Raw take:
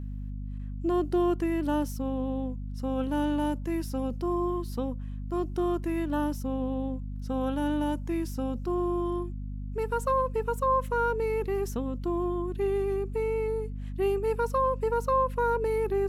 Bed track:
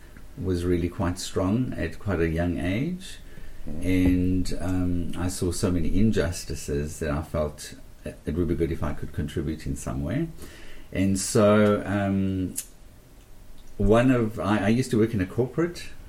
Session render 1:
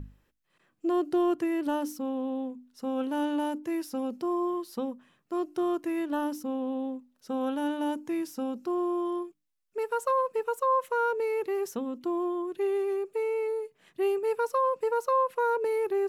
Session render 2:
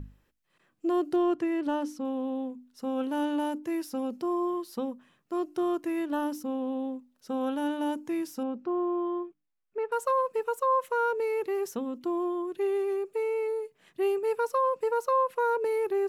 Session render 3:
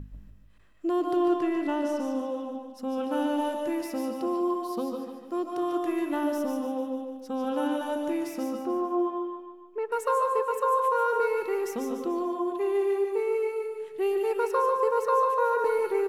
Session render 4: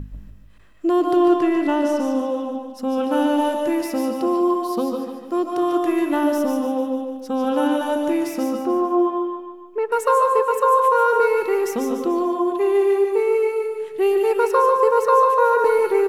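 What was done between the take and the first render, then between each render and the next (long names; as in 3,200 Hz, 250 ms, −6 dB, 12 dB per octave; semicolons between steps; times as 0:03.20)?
mains-hum notches 50/100/150/200/250/300 Hz
0:01.16–0:02.05: high-frequency loss of the air 56 metres; 0:08.43–0:09.92: low-pass filter 2,300 Hz
repeating echo 147 ms, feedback 48%, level −8 dB; comb and all-pass reverb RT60 0.6 s, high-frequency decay 0.7×, pre-delay 100 ms, DRR 3.5 dB
level +8.5 dB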